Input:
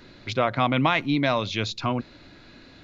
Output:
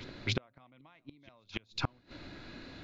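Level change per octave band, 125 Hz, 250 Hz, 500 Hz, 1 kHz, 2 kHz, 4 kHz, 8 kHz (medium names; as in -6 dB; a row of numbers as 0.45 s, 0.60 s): -12.0 dB, -18.5 dB, -20.0 dB, -21.5 dB, -15.0 dB, -11.0 dB, no reading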